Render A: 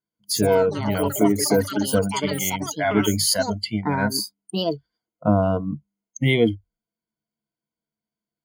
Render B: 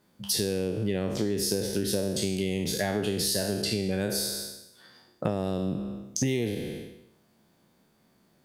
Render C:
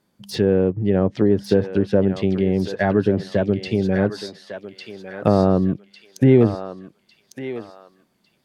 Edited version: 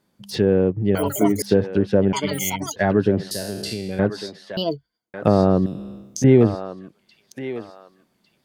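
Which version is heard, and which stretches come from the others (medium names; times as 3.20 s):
C
0.95–1.42 s: from A
2.13–2.76 s: from A
3.31–3.99 s: from B
4.57–5.14 s: from A
5.66–6.24 s: from B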